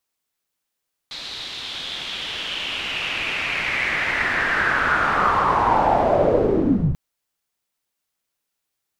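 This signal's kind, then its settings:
filter sweep on noise white, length 5.84 s lowpass, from 4,000 Hz, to 100 Hz, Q 4.6, linear, gain ramp +28.5 dB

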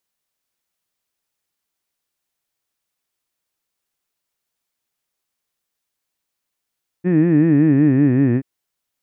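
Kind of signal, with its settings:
vowel from formants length 1.38 s, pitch 171 Hz, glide −5.5 semitones, vibrato depth 1.4 semitones, F1 300 Hz, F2 1,800 Hz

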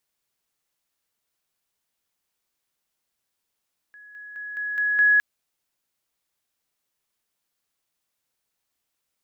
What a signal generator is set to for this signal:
level staircase 1,680 Hz −44 dBFS, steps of 6 dB, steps 6, 0.21 s 0.00 s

